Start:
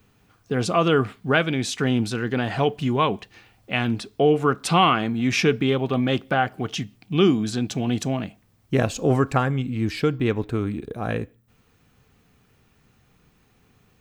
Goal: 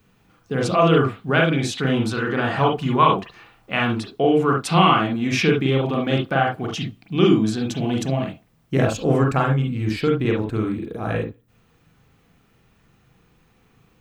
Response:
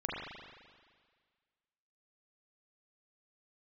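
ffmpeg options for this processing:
-filter_complex "[0:a]asettb=1/sr,asplit=3[s0][s1][s2];[s0]atrim=end=1.884[s3];[s1]atrim=start=1.88:end=3.96,asetpts=PTS-STARTPTS,afade=t=in:d=0.004:c=qsin,afade=t=out:st=2.076:d=0.004:c=qsin,equalizer=f=1200:w=1.8:g=8[s4];[s2]atrim=start=3.956[s5];[s3][s4]acrossfade=d=0.004:c1=hsin:c2=qsin[s6];[s6][s5]acrossfade=d=0.004:c1=qsin:c2=hsin[s7];[1:a]atrim=start_sample=2205,atrim=end_sample=3528[s8];[s7][s8]afir=irnorm=-1:irlink=0"

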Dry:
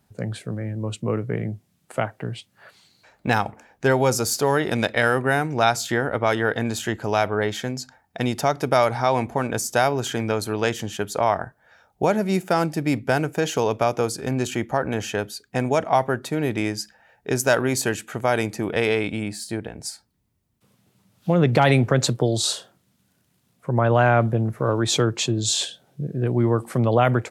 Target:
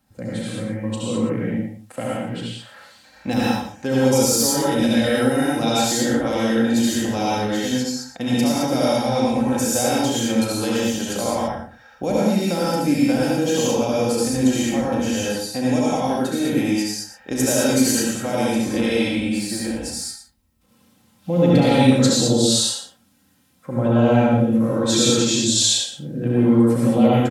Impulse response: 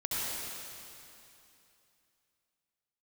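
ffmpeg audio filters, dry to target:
-filter_complex "[0:a]bandreject=f=440:w=14,aecho=1:1:3.8:0.59,acrossover=split=620|2800[s0][s1][s2];[s1]acompressor=threshold=0.00891:ratio=4[s3];[s0][s3][s2]amix=inputs=3:normalize=0,aecho=1:1:34.99|119.5:0.355|0.282[s4];[1:a]atrim=start_sample=2205,afade=t=out:st=0.27:d=0.01,atrim=end_sample=12348[s5];[s4][s5]afir=irnorm=-1:irlink=0"

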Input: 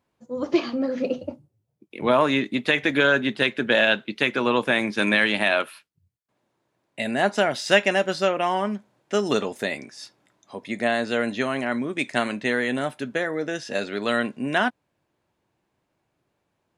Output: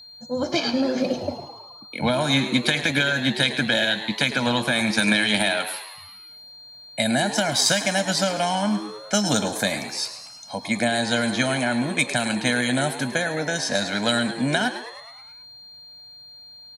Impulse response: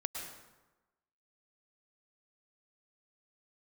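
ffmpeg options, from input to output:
-filter_complex "[0:a]highshelf=f=5000:g=9.5,bandreject=f=2700:w=5.1,aecho=1:1:1.3:0.91,alimiter=limit=0.316:level=0:latency=1:release=155,acrossover=split=250|3000[s0][s1][s2];[s1]acompressor=threshold=0.0398:ratio=6[s3];[s0][s3][s2]amix=inputs=3:normalize=0,asplit=8[s4][s5][s6][s7][s8][s9][s10][s11];[s5]adelay=106,afreqshift=110,volume=0.237[s12];[s6]adelay=212,afreqshift=220,volume=0.143[s13];[s7]adelay=318,afreqshift=330,volume=0.0851[s14];[s8]adelay=424,afreqshift=440,volume=0.0513[s15];[s9]adelay=530,afreqshift=550,volume=0.0309[s16];[s10]adelay=636,afreqshift=660,volume=0.0184[s17];[s11]adelay=742,afreqshift=770,volume=0.0111[s18];[s4][s12][s13][s14][s15][s16][s17][s18]amix=inputs=8:normalize=0,aeval=exprs='val(0)+0.00447*sin(2*PI*4200*n/s)':c=same,aeval=exprs='0.355*(cos(1*acos(clip(val(0)/0.355,-1,1)))-cos(1*PI/2))+0.0355*(cos(3*acos(clip(val(0)/0.355,-1,1)))-cos(3*PI/2))':c=same,asplit=2[s19][s20];[1:a]atrim=start_sample=2205,atrim=end_sample=3528,adelay=139[s21];[s20][s21]afir=irnorm=-1:irlink=0,volume=0.141[s22];[s19][s22]amix=inputs=2:normalize=0,volume=2.51"

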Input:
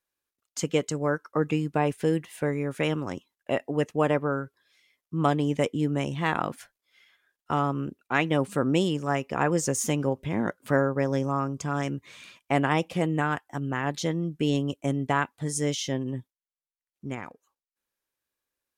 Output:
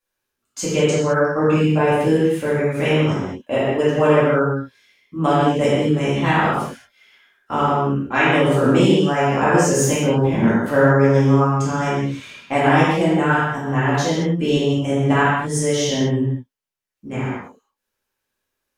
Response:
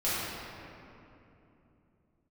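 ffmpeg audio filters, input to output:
-filter_complex "[1:a]atrim=start_sample=2205,afade=t=out:st=0.33:d=0.01,atrim=end_sample=14994,asetrate=52920,aresample=44100[s0];[0:a][s0]afir=irnorm=-1:irlink=0,volume=1.19"

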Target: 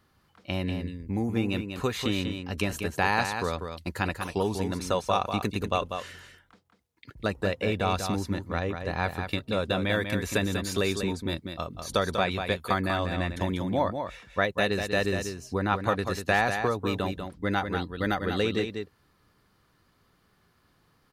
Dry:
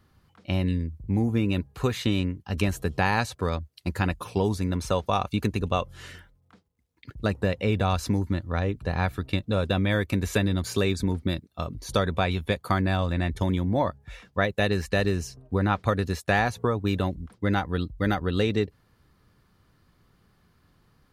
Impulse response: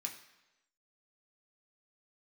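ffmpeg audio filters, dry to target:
-af "lowshelf=f=210:g=-9,aecho=1:1:193:0.447"

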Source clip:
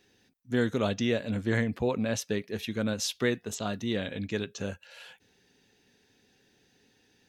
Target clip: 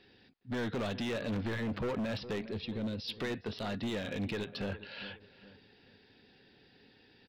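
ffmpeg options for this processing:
-filter_complex "[0:a]acrossover=split=1300[s0][s1];[s0]asoftclip=type=tanh:threshold=0.0422[s2];[s2][s1]amix=inputs=2:normalize=0,alimiter=level_in=1.88:limit=0.0631:level=0:latency=1:release=84,volume=0.531,asettb=1/sr,asplit=3[s3][s4][s5];[s3]atrim=end=2.494[s6];[s4]atrim=start=2.49:end=3.08,asetpts=PTS-STARTPTS,afade=t=in:d=0.004:c=qsin,afade=t=out:st=0.586:d=0.004:c=qsin,equalizer=f=1400:w=0.53:g=-12.5[s7];[s5]atrim=start=3.076[s8];[s6][s7]acrossfade=d=0.004:c1=hsin:c2=qsin[s9];[s9][s8]acrossfade=d=0.004:c1=qsin:c2=hsin,asplit=2[s10][s11];[s11]adelay=411,lowpass=f=1900:p=1,volume=0.178,asplit=2[s12][s13];[s13]adelay=411,lowpass=f=1900:p=1,volume=0.38,asplit=2[s14][s15];[s15]adelay=411,lowpass=f=1900:p=1,volume=0.38[s16];[s12][s14][s16]amix=inputs=3:normalize=0[s17];[s10][s17]amix=inputs=2:normalize=0,aresample=11025,aresample=44100,asoftclip=type=hard:threshold=0.0168,volume=1.58"

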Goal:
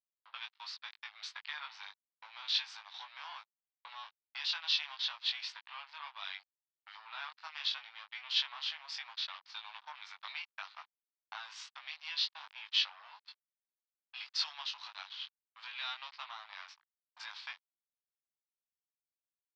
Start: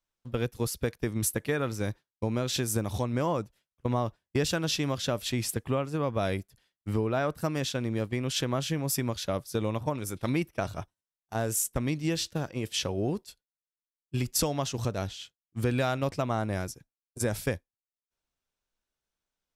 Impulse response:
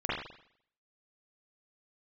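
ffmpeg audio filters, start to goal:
-filter_complex "[0:a]acrossover=split=3100[s0][s1];[s0]acompressor=threshold=0.01:ratio=10[s2];[s2][s1]amix=inputs=2:normalize=0,aeval=exprs='sgn(val(0))*max(abs(val(0))-0.00398,0)':c=same,asuperpass=centerf=2000:order=12:qfactor=0.55,asplit=2[s3][s4];[s4]adelay=20,volume=0.708[s5];[s3][s5]amix=inputs=2:normalize=0,volume=1.78"

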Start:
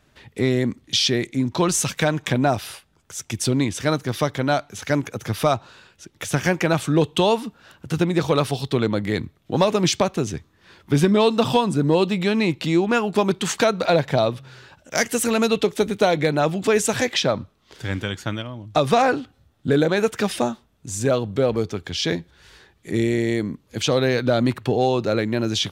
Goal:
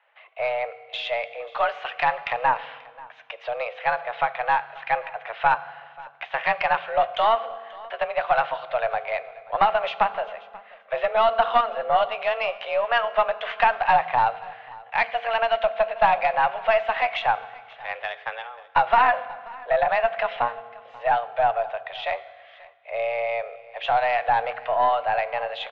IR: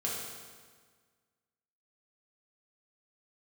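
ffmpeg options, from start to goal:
-filter_complex "[0:a]highpass=f=380:t=q:w=0.5412,highpass=f=380:t=q:w=1.307,lowpass=f=2700:t=q:w=0.5176,lowpass=f=2700:t=q:w=0.7071,lowpass=f=2700:t=q:w=1.932,afreqshift=230,aeval=exprs='0.501*(cos(1*acos(clip(val(0)/0.501,-1,1)))-cos(1*PI/2))+0.1*(cos(2*acos(clip(val(0)/0.501,-1,1)))-cos(2*PI/2))':c=same,aecho=1:1:535:0.0841,asplit=2[s0][s1];[1:a]atrim=start_sample=2205,adelay=11[s2];[s1][s2]afir=irnorm=-1:irlink=0,volume=0.133[s3];[s0][s3]amix=inputs=2:normalize=0"

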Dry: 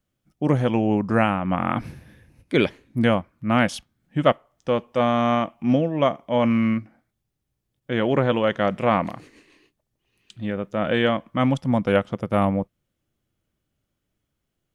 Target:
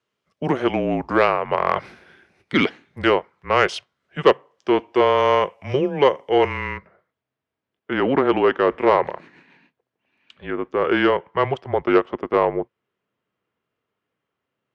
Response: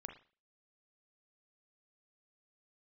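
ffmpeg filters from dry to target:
-af "asetnsamples=n=441:p=0,asendcmd='5.18 lowpass f 8000;6.78 lowpass f 2400',lowpass=4700,asoftclip=type=tanh:threshold=0.398,afreqshift=-140,highpass=290,volume=2.11"

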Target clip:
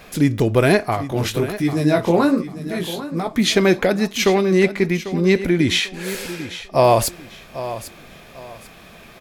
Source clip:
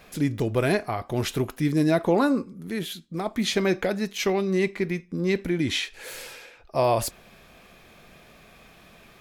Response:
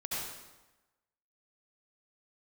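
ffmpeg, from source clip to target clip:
-filter_complex "[0:a]asplit=3[s0][s1][s2];[s0]afade=t=out:st=0.95:d=0.02[s3];[s1]flanger=delay=16:depth=7.2:speed=1.2,afade=t=in:st=0.95:d=0.02,afade=t=out:st=3.27:d=0.02[s4];[s2]afade=t=in:st=3.27:d=0.02[s5];[s3][s4][s5]amix=inputs=3:normalize=0,aecho=1:1:795|1590|2385:0.211|0.0592|0.0166,volume=2.51"

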